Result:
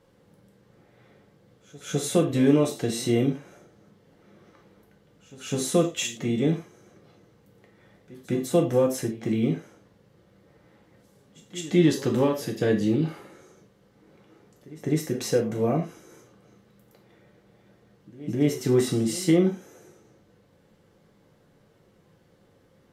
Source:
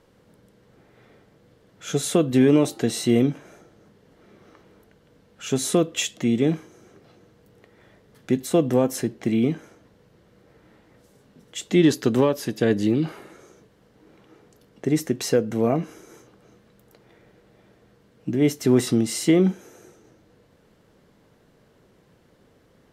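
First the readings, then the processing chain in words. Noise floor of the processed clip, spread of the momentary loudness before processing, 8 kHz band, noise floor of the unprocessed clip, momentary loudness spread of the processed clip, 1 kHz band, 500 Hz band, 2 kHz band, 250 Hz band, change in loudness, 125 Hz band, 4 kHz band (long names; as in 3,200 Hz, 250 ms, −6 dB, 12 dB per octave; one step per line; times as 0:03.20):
−61 dBFS, 13 LU, −3.0 dB, −59 dBFS, 12 LU, −2.5 dB, −2.0 dB, −3.0 dB, −3.0 dB, −3.0 dB, −1.0 dB, −3.0 dB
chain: backwards echo 205 ms −19.5 dB
reverb whose tail is shaped and stops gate 130 ms falling, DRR 1 dB
level −5.5 dB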